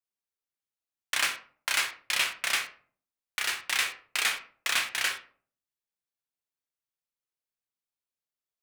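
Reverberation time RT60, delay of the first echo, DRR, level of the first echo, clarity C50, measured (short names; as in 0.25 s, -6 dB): 0.45 s, none, 5.0 dB, none, 12.0 dB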